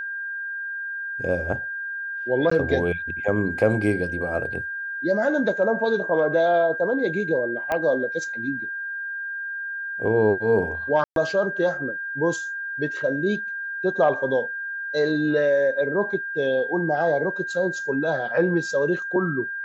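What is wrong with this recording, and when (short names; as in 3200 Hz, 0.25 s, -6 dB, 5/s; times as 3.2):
tone 1600 Hz -28 dBFS
2.5–2.51 gap 14 ms
7.72 pop -12 dBFS
11.04–11.16 gap 0.122 s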